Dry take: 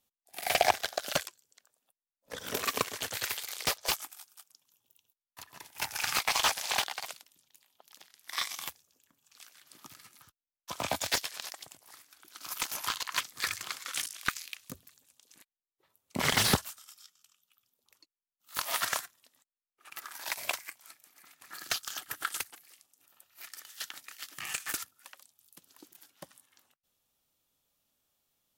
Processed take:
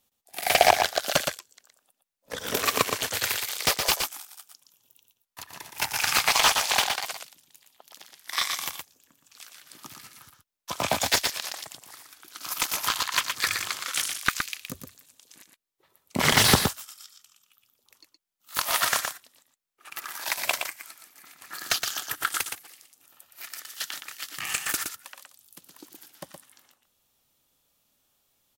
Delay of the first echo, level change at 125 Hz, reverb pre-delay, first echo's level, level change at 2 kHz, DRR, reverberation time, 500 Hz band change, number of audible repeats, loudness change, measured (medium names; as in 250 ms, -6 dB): 118 ms, +7.5 dB, no reverb, -6.0 dB, +7.5 dB, no reverb, no reverb, +7.5 dB, 1, +7.5 dB